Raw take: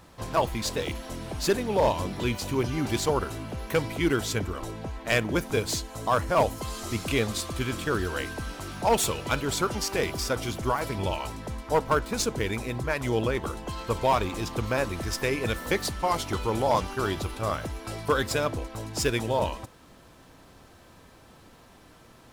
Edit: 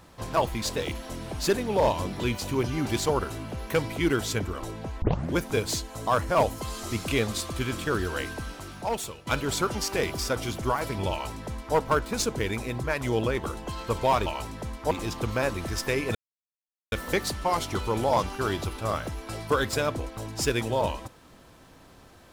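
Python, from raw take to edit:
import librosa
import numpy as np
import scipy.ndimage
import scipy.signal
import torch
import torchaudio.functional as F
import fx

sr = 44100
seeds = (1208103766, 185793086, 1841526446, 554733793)

y = fx.edit(x, sr, fx.tape_start(start_s=5.02, length_s=0.31),
    fx.fade_out_to(start_s=8.3, length_s=0.97, floor_db=-16.5),
    fx.duplicate(start_s=11.11, length_s=0.65, to_s=14.26),
    fx.insert_silence(at_s=15.5, length_s=0.77), tone=tone)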